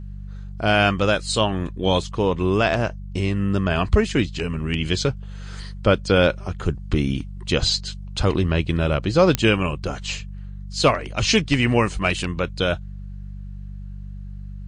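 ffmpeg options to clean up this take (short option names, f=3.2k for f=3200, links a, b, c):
-af "adeclick=t=4,bandreject=f=48.7:t=h:w=4,bandreject=f=97.4:t=h:w=4,bandreject=f=146.1:t=h:w=4,bandreject=f=194.8:t=h:w=4"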